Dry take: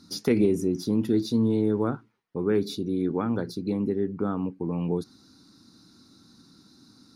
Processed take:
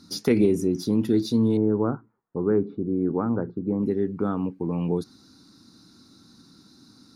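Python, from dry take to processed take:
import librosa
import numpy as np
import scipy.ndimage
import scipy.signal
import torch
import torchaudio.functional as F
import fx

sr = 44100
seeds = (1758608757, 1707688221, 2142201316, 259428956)

y = fx.lowpass(x, sr, hz=1400.0, slope=24, at=(1.57, 3.83))
y = F.gain(torch.from_numpy(y), 2.0).numpy()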